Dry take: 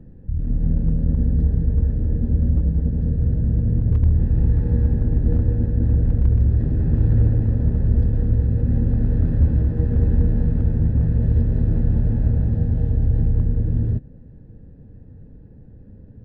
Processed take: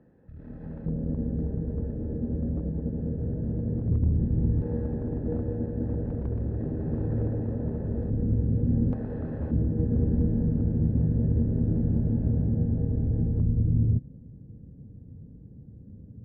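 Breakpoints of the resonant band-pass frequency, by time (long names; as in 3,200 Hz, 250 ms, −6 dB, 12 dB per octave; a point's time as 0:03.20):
resonant band-pass, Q 0.76
1,200 Hz
from 0:00.86 460 Hz
from 0:03.88 260 Hz
from 0:04.62 530 Hz
from 0:08.10 260 Hz
from 0:08.93 750 Hz
from 0:09.51 270 Hz
from 0:13.41 160 Hz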